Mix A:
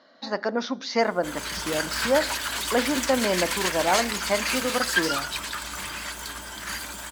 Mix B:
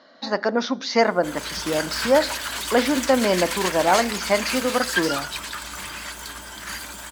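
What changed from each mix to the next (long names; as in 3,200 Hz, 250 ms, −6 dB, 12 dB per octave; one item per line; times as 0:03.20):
speech +4.5 dB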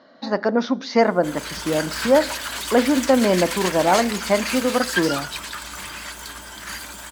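speech: add spectral tilt −2 dB per octave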